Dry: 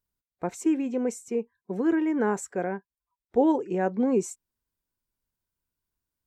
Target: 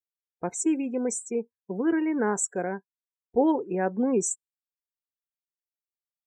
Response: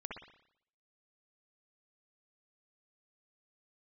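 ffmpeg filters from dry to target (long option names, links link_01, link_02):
-af "afftdn=noise_reduction=34:noise_floor=-44,aemphasis=mode=production:type=75fm"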